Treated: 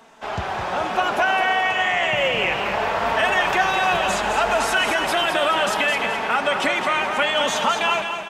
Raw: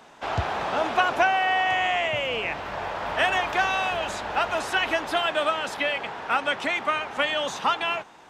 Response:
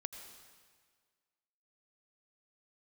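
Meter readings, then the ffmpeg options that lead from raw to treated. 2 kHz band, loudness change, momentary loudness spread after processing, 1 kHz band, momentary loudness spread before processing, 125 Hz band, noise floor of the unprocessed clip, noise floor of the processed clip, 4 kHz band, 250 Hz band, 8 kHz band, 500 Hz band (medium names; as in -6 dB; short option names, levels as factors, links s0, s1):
+5.0 dB, +5.0 dB, 4 LU, +4.0 dB, 7 LU, +2.0 dB, -49 dBFS, -28 dBFS, +5.5 dB, +5.5 dB, +9.5 dB, +5.0 dB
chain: -filter_complex "[0:a]equalizer=f=4000:w=1.5:g=-2,dynaudnorm=f=820:g=3:m=2.99,alimiter=limit=0.251:level=0:latency=1,flanger=delay=4.4:depth=1.1:regen=36:speed=0.66:shape=sinusoidal,aecho=1:1:212|424|636|848|1060:0.447|0.179|0.0715|0.0286|0.0114,asplit=2[s0][s1];[1:a]atrim=start_sample=2205,asetrate=41454,aresample=44100,highshelf=f=6800:g=8.5[s2];[s1][s2]afir=irnorm=-1:irlink=0,volume=0.841[s3];[s0][s3]amix=inputs=2:normalize=0"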